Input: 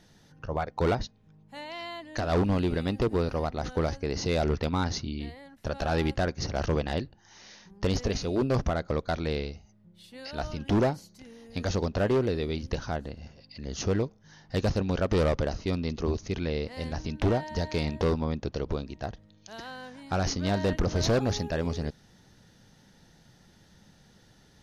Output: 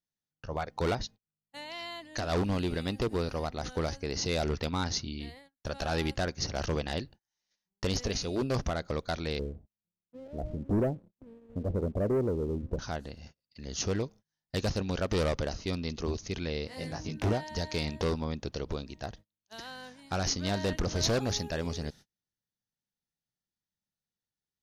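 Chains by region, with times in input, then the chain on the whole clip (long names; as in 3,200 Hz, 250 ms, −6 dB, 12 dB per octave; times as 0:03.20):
0:09.39–0:12.79: Butterworth low-pass 630 Hz + leveller curve on the samples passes 1
0:16.67–0:17.33: dynamic equaliser 3,700 Hz, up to −6 dB, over −53 dBFS, Q 1 + high-pass filter 63 Hz + double-tracking delay 19 ms −3 dB
whole clip: noise gate −45 dBFS, range −36 dB; high-shelf EQ 2,800 Hz +9 dB; level −4.5 dB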